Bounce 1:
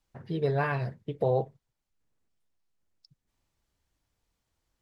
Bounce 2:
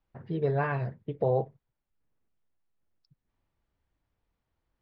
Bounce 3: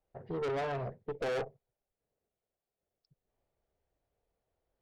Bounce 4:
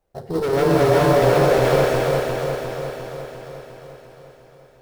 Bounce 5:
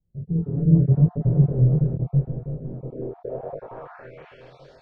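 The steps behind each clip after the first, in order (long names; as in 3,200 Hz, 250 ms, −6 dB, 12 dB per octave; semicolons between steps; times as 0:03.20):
Bessel low-pass filter 2,100 Hz, order 2
flat-topped bell 540 Hz +11 dB 1.2 octaves; in parallel at −7 dB: gain into a clipping stage and back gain 26 dB; on the sum: tube saturation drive 24 dB, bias 0.4; level −7.5 dB
feedback delay that plays each chunk backwards 176 ms, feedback 79%, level 0 dB; in parallel at −5.5 dB: sample-rate reduction 4,800 Hz, jitter 20%; on the sum: reverb whose tail is shaped and stops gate 450 ms rising, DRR −3 dB; level +7.5 dB
time-frequency cells dropped at random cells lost 25%; chorus effect 0.81 Hz, delay 18.5 ms, depth 7.4 ms; low-pass filter sweep 160 Hz → 4,700 Hz, 0:02.61–0:04.66; level +4 dB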